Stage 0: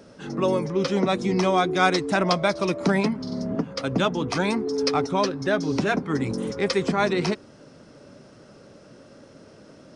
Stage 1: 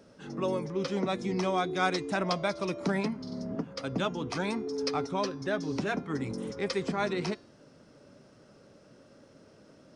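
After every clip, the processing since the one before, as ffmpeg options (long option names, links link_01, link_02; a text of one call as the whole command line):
ffmpeg -i in.wav -af "bandreject=frequency=346.7:width_type=h:width=4,bandreject=frequency=693.4:width_type=h:width=4,bandreject=frequency=1040.1:width_type=h:width=4,bandreject=frequency=1386.8:width_type=h:width=4,bandreject=frequency=1733.5:width_type=h:width=4,bandreject=frequency=2080.2:width_type=h:width=4,bandreject=frequency=2426.9:width_type=h:width=4,bandreject=frequency=2773.6:width_type=h:width=4,bandreject=frequency=3120.3:width_type=h:width=4,bandreject=frequency=3467:width_type=h:width=4,bandreject=frequency=3813.7:width_type=h:width=4,bandreject=frequency=4160.4:width_type=h:width=4,bandreject=frequency=4507.1:width_type=h:width=4,bandreject=frequency=4853.8:width_type=h:width=4,bandreject=frequency=5200.5:width_type=h:width=4,bandreject=frequency=5547.2:width_type=h:width=4,bandreject=frequency=5893.9:width_type=h:width=4,bandreject=frequency=6240.6:width_type=h:width=4,bandreject=frequency=6587.3:width_type=h:width=4,bandreject=frequency=6934:width_type=h:width=4,volume=-8dB" out.wav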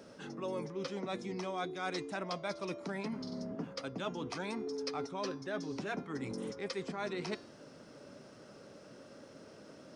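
ffmpeg -i in.wav -af "areverse,acompressor=threshold=-39dB:ratio=6,areverse,lowshelf=frequency=130:gain=-9.5,volume=4dB" out.wav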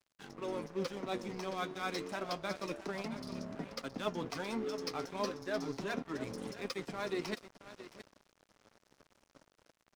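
ffmpeg -i in.wav -af "flanger=delay=0.8:depth=9.4:regen=52:speed=0.3:shape=sinusoidal,aecho=1:1:670:0.299,aeval=exprs='sgn(val(0))*max(abs(val(0))-0.00237,0)':channel_layout=same,volume=6dB" out.wav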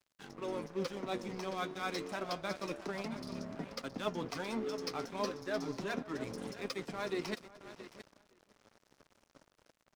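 ffmpeg -i in.wav -filter_complex "[0:a]asplit=2[link_01][link_02];[link_02]adelay=513.1,volume=-19dB,highshelf=frequency=4000:gain=-11.5[link_03];[link_01][link_03]amix=inputs=2:normalize=0" out.wav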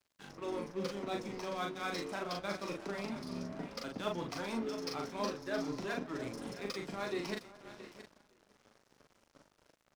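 ffmpeg -i in.wav -filter_complex "[0:a]asplit=2[link_01][link_02];[link_02]adelay=40,volume=-3.5dB[link_03];[link_01][link_03]amix=inputs=2:normalize=0,volume=-1.5dB" out.wav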